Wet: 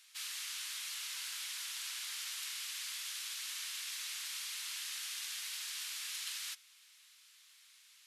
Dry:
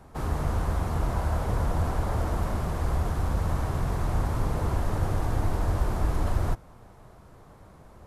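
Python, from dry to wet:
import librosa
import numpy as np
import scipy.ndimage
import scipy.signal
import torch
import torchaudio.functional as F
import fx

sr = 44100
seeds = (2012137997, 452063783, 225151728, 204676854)

y = scipy.signal.sosfilt(scipy.signal.cheby2(4, 80, 480.0, 'highpass', fs=sr, output='sos'), x)
y = fx.high_shelf(y, sr, hz=6900.0, db=-8.0)
y = y * librosa.db_to_amplitude(12.0)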